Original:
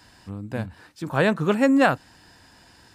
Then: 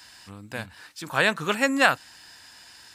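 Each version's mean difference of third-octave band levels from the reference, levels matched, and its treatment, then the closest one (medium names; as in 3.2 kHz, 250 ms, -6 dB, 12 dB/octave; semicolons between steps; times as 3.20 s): 6.0 dB: tilt shelf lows -9 dB, about 910 Hz; trim -1 dB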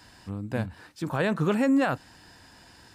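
3.5 dB: peak limiter -16 dBFS, peak gain reduction 10.5 dB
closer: second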